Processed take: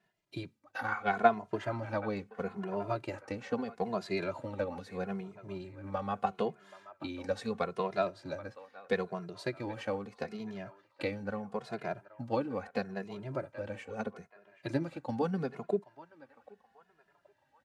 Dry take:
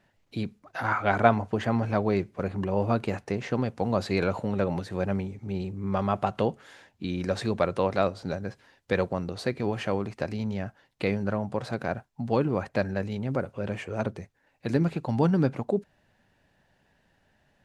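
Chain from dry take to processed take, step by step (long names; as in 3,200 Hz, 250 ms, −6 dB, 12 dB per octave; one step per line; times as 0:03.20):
transient designer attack +5 dB, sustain −1 dB
high-pass filter 200 Hz 6 dB per octave
on a send: feedback echo with a band-pass in the loop 778 ms, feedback 49%, band-pass 1,300 Hz, level −15 dB
on the sum: barber-pole flanger 2.4 ms −0.77 Hz
level −5.5 dB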